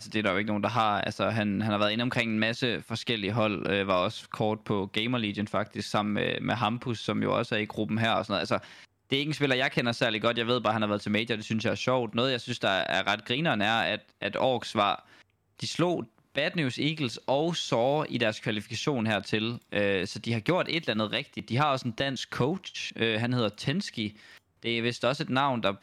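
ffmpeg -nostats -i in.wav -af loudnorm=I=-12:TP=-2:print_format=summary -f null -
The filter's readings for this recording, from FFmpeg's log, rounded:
Input Integrated:    -28.5 LUFS
Input True Peak:     -13.1 dBTP
Input LRA:             2.0 LU
Input Threshold:     -38.7 LUFS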